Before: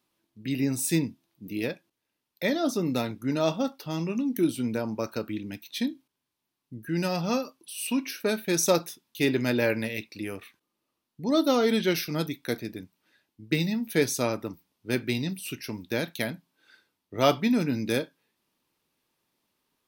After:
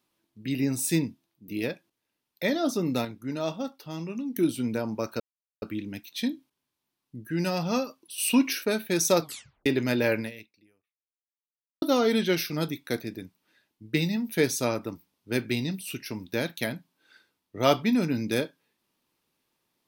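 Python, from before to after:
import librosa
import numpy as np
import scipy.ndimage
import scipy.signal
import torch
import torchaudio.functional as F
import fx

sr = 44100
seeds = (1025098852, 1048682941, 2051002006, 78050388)

y = fx.edit(x, sr, fx.fade_out_to(start_s=0.94, length_s=0.54, curve='qsin', floor_db=-10.0),
    fx.clip_gain(start_s=3.05, length_s=1.31, db=-5.0),
    fx.insert_silence(at_s=5.2, length_s=0.42),
    fx.clip_gain(start_s=7.76, length_s=0.47, db=6.0),
    fx.tape_stop(start_s=8.79, length_s=0.45),
    fx.fade_out_span(start_s=9.77, length_s=1.63, curve='exp'), tone=tone)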